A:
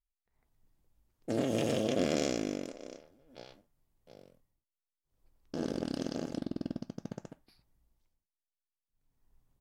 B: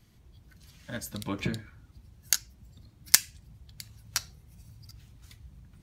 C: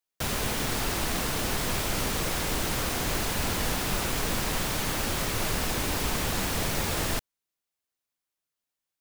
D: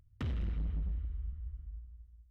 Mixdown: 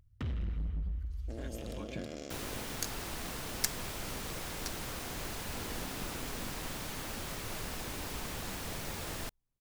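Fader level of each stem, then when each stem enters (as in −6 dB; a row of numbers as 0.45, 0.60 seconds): −13.5, −13.0, −11.5, −0.5 decibels; 0.00, 0.50, 2.10, 0.00 seconds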